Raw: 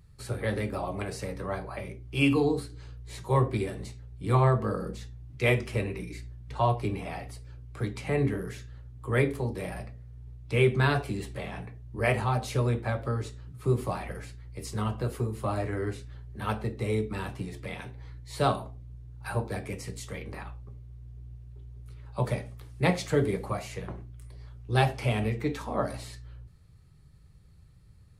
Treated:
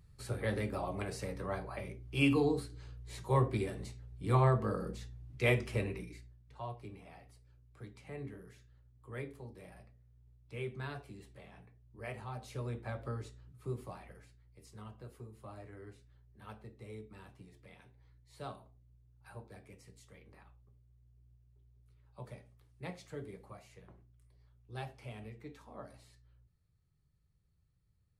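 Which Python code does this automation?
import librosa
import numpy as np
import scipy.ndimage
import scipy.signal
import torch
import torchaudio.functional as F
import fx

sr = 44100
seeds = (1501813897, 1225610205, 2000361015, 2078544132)

y = fx.gain(x, sr, db=fx.line((5.92, -5.0), (6.45, -18.0), (12.13, -18.0), (13.08, -9.5), (14.55, -19.5)))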